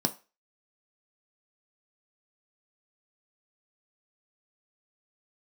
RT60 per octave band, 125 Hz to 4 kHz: 0.25, 0.25, 0.30, 0.30, 0.35, 0.30 seconds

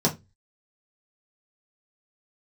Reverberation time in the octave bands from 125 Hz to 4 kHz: 0.40, 0.30, 0.25, 0.20, 0.20, 0.20 seconds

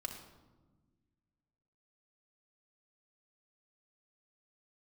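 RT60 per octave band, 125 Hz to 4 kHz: 2.2, 2.1, 1.5, 1.1, 0.80, 0.70 seconds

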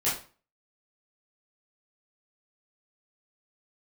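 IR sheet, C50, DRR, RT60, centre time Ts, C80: 5.5 dB, −10.5 dB, 0.40 s, 36 ms, 11.5 dB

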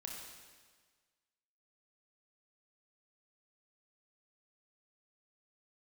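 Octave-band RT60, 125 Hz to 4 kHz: 1.5, 1.5, 1.5, 1.5, 1.5, 1.5 seconds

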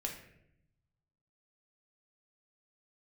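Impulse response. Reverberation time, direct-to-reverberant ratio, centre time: 0.75 s, 0.0 dB, 26 ms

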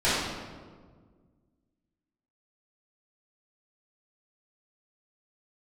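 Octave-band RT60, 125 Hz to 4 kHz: 2.3, 2.2, 1.8, 1.4, 1.1, 0.95 seconds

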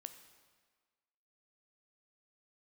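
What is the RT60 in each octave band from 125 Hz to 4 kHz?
1.2, 1.5, 1.5, 1.6, 1.4, 1.3 seconds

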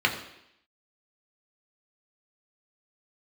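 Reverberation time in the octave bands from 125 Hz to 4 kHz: 0.65, 0.80, 0.75, 0.80, 0.85, 0.85 seconds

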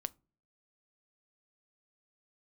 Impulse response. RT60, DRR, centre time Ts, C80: non-exponential decay, 15.5 dB, 1 ms, 34.0 dB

